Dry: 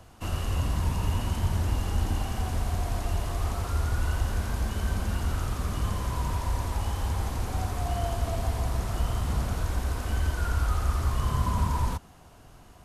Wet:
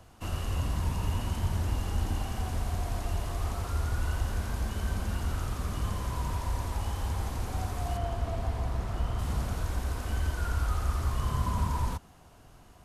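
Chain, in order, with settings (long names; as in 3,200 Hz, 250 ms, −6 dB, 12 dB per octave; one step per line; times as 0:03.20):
0:07.97–0:09.19: high-shelf EQ 5,100 Hz −11 dB
level −3 dB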